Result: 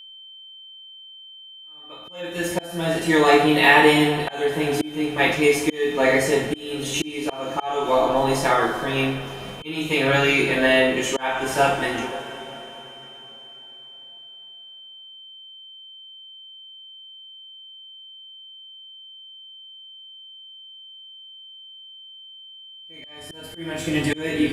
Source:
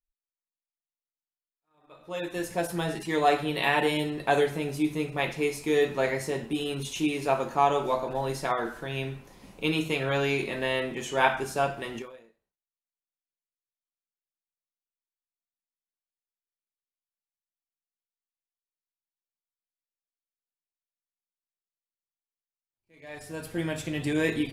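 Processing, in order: two-slope reverb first 0.38 s, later 4 s, from -19 dB, DRR -4.5 dB; auto swell 0.46 s; whine 3100 Hz -46 dBFS; gain +5.5 dB

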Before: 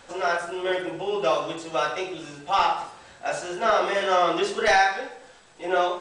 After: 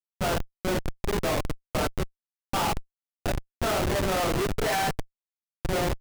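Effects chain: spectral delete 1.88–2.54, 620–1500 Hz; Schmitt trigger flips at -22 dBFS

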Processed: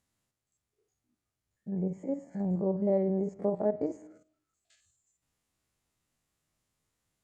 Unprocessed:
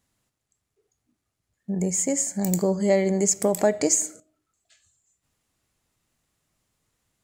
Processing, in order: stepped spectrum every 50 ms; treble ducked by the level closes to 890 Hz, closed at -23.5 dBFS; dynamic EQ 2200 Hz, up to -6 dB, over -48 dBFS, Q 1.5; gain -5.5 dB

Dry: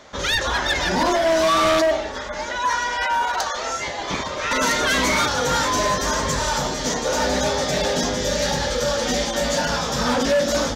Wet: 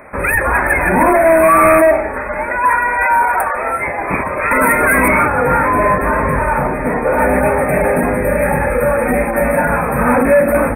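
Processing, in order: brick-wall FIR band-stop 2600–8400 Hz; high shelf 5200 Hz +8 dB, from 5.08 s -6 dB, from 7.19 s +4.5 dB; gain +8.5 dB

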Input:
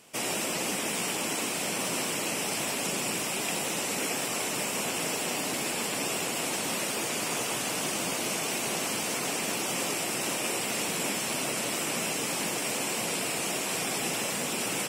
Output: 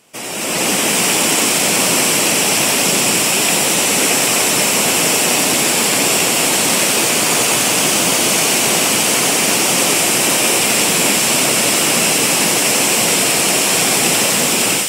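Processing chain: AGC gain up to 12 dB; on a send: thin delay 90 ms, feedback 84%, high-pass 2700 Hz, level -5 dB; on the sum: gain +3 dB

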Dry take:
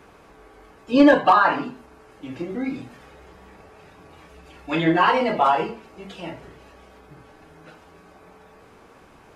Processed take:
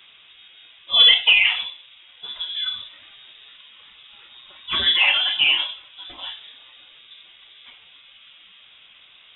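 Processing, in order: inverted band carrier 3700 Hz

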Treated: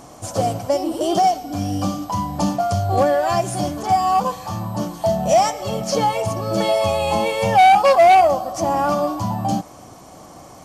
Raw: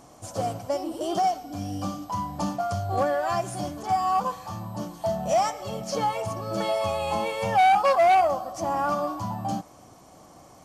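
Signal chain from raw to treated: dynamic EQ 1300 Hz, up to -6 dB, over -39 dBFS, Q 1.4; gain +9 dB

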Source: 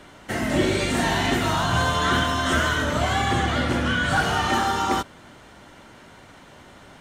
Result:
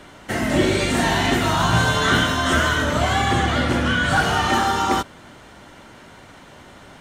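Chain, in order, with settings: 1.58–2.37 doubler 18 ms -3.5 dB; gain +3 dB

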